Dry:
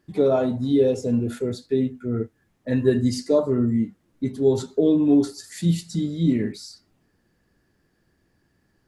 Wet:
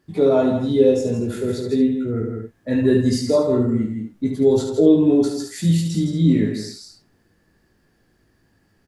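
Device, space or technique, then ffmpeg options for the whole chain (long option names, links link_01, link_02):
ducked delay: -filter_complex "[0:a]aecho=1:1:19|73:0.596|0.531,asplit=3[link_01][link_02][link_03];[link_02]adelay=162,volume=-3.5dB[link_04];[link_03]apad=whole_len=401755[link_05];[link_04][link_05]sidechaincompress=threshold=-21dB:ratio=8:attack=50:release=962[link_06];[link_01][link_06]amix=inputs=2:normalize=0,volume=1.5dB"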